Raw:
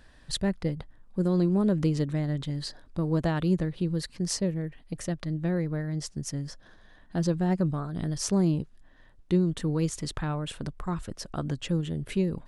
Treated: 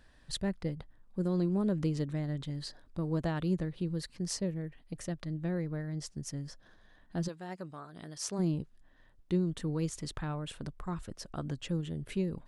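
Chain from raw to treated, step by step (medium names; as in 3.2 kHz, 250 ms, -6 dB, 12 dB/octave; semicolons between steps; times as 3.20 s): 7.27–8.38 s: high-pass 1.1 kHz -> 480 Hz 6 dB/octave; trim -6 dB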